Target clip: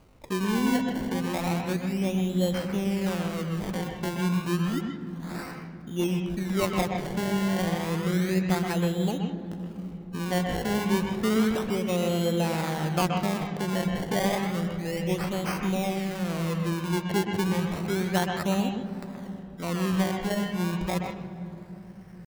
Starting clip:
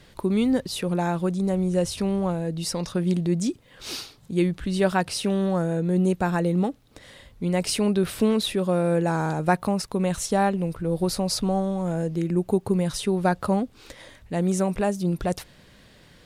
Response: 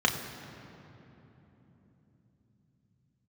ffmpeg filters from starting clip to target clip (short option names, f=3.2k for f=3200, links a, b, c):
-filter_complex "[0:a]aeval=exprs='val(0)+0.00158*(sin(2*PI*50*n/s)+sin(2*PI*2*50*n/s)/2+sin(2*PI*3*50*n/s)/3+sin(2*PI*4*50*n/s)/4+sin(2*PI*5*50*n/s)/5)':c=same,acrusher=samples=24:mix=1:aa=0.000001:lfo=1:lforange=24:lforate=0.42,atempo=0.73,asplit=2[a][b];[1:a]atrim=start_sample=2205,lowpass=4.7k,adelay=125[c];[b][c]afir=irnorm=-1:irlink=0,volume=-16dB[d];[a][d]amix=inputs=2:normalize=0,volume=-5.5dB"